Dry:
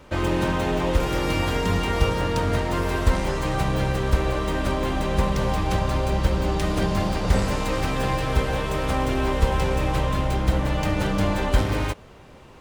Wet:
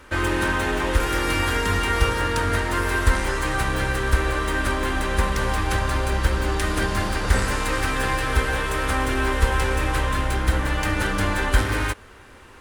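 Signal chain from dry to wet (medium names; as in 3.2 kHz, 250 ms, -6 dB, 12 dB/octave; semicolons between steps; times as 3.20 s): fifteen-band graphic EQ 160 Hz -12 dB, 630 Hz -6 dB, 1.6 kHz +8 dB, 10 kHz +8 dB; trim +1.5 dB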